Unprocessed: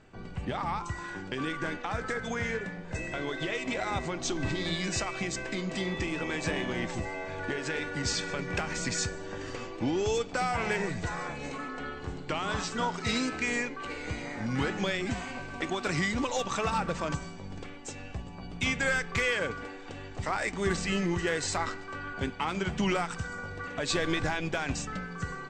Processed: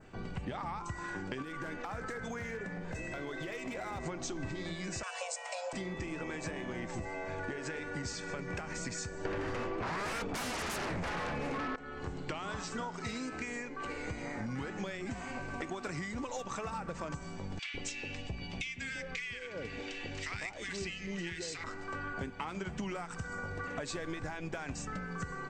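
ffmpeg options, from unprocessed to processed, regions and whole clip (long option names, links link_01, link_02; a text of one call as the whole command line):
ffmpeg -i in.wav -filter_complex "[0:a]asettb=1/sr,asplit=3[link_01][link_02][link_03];[link_01]atrim=end=1.424[link_04];[link_02]atrim=start=1.42:end=4.06,asetpts=PTS-STARTPTS,afade=type=in:duration=0.004:curve=qsin,afade=type=out:start_time=2.636:duration=0.004:curve=qsin,asoftclip=type=hard:threshold=-26dB,acompressor=threshold=-37dB:ratio=4:attack=3.2:release=140:knee=1:detection=peak[link_05];[link_03]atrim=start=4.056[link_06];[link_04][link_05]acrossfade=duration=0.004:curve1=hsin:curve2=qsin[link_07];[link_07][link_06]acrossfade=duration=0.004:curve1=qsin:curve2=hsin,asettb=1/sr,asplit=3[link_08][link_09][link_10];[link_08]atrim=end=5.034[link_11];[link_09]atrim=start=5.03:end=5.73,asetpts=PTS-STARTPTS,afade=type=in:duration=0.004:curve=qsin,afade=type=out:start_time=0.696:duration=0.004:curve=qsin,highpass=frequency=110:width=0.5412,highpass=frequency=110:width=1.3066,highshelf=frequency=4000:gain=11,afreqshift=350[link_12];[link_10]atrim=start=5.726[link_13];[link_11][link_12]acrossfade=duration=0.004:curve1=hsin:curve2=qsin[link_14];[link_14][link_13]acrossfade=duration=0.004:curve1=qsin:curve2=hsin,asettb=1/sr,asplit=3[link_15][link_16][link_17];[link_15]atrim=end=9.254[link_18];[link_16]atrim=start=9.25:end=11.76,asetpts=PTS-STARTPTS,afade=type=in:duration=0.004:curve=qsin,afade=type=out:start_time=2.506:duration=0.004:curve=qsin,bass=frequency=250:gain=-1,treble=frequency=4000:gain=-14,aeval=exprs='0.126*sin(PI/2*7.08*val(0)/0.126)':channel_layout=same[link_19];[link_17]atrim=start=11.756[link_20];[link_18][link_19]acrossfade=duration=0.004:curve1=hsin:curve2=qsin[link_21];[link_21][link_20]acrossfade=duration=0.004:curve1=qsin:curve2=hsin,asettb=1/sr,asplit=3[link_22][link_23][link_24];[link_22]atrim=end=17.594[link_25];[link_23]atrim=start=17.59:end=21.64,asetpts=PTS-STARTPTS,afade=type=in:duration=0.004:curve=qsin,afade=type=out:start_time=4.046:duration=0.004:curve=qsin,lowpass=5100,highshelf=frequency=1800:width_type=q:width=1.5:gain=10.5,acrossover=split=1100[link_26][link_27];[link_26]adelay=150[link_28];[link_28][link_27]amix=inputs=2:normalize=0,atrim=end_sample=178605[link_29];[link_24]atrim=start=21.636[link_30];[link_25][link_29]acrossfade=duration=0.004:curve1=hsin:curve2=qsin[link_31];[link_31][link_30]acrossfade=duration=0.004:curve1=qsin:curve2=hsin,acompressor=threshold=-37dB:ratio=10,adynamicequalizer=threshold=0.00112:dfrequency=3500:dqfactor=1.4:tfrequency=3500:tqfactor=1.4:attack=5:release=100:ratio=0.375:range=3.5:mode=cutabove:tftype=bell,volume=2dB" out.wav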